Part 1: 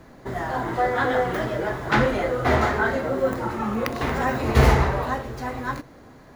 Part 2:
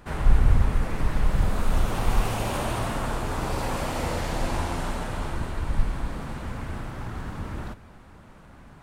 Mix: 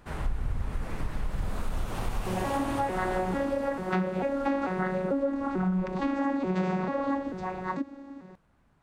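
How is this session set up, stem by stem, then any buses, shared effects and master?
+1.0 dB, 2.00 s, no send, arpeggiated vocoder bare fifth, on F#3, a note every 0.443 s
3.18 s -5 dB -> 3.8 s -18 dB, 0.00 s, no send, dry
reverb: off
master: compressor, threshold -25 dBFS, peak gain reduction 11 dB

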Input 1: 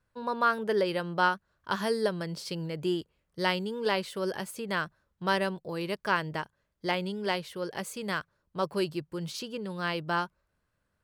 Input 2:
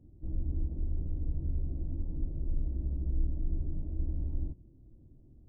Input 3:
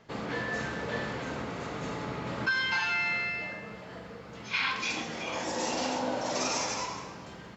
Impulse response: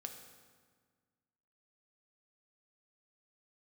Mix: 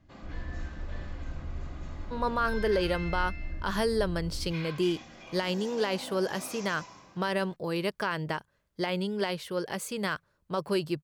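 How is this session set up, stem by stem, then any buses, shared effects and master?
+3.0 dB, 1.95 s, no send, limiter -22 dBFS, peak gain reduction 11 dB
-5.0 dB, 0.00 s, no send, dry
-12.0 dB, 0.00 s, no send, notch comb 450 Hz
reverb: off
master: dry

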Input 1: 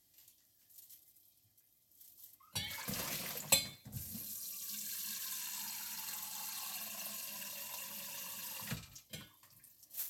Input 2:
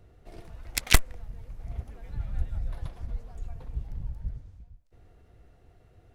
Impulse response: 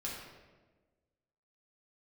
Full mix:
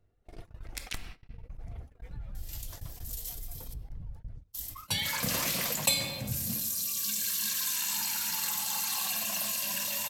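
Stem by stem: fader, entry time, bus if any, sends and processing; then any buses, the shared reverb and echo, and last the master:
+1.0 dB, 2.35 s, muted 3.74–4.53, send -10.5 dB, dry
-19.0 dB, 0.00 s, send -8 dB, reverb removal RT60 0.73 s; compressor 2.5:1, threshold -36 dBFS, peak gain reduction 17 dB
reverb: on, RT60 1.3 s, pre-delay 4 ms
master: gate -59 dBFS, range -38 dB; fast leveller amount 50%

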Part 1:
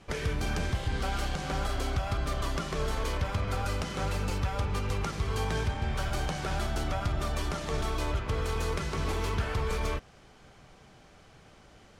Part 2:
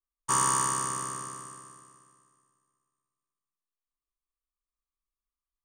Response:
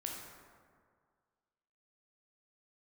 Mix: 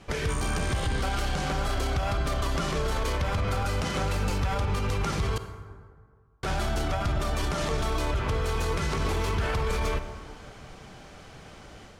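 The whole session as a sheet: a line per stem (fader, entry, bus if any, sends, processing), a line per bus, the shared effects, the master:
+2.5 dB, 0.00 s, muted 5.38–6.43, send -9.5 dB, AGC gain up to 4.5 dB
-10.5 dB, 0.00 s, no send, dry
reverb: on, RT60 1.9 s, pre-delay 12 ms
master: limiter -19.5 dBFS, peak gain reduction 9 dB

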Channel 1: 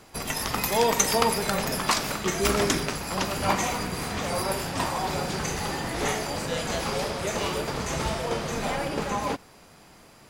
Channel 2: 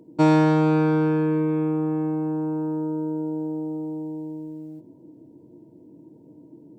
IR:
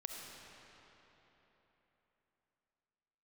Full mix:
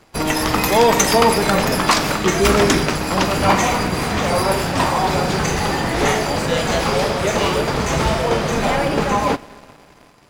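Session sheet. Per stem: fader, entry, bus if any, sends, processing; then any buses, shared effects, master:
+2.0 dB, 0.00 s, send -12 dB, high shelf 5700 Hz -7.5 dB
-12.5 dB, 0.00 s, no send, HPF 270 Hz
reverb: on, RT60 3.8 s, pre-delay 25 ms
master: sample leveller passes 2

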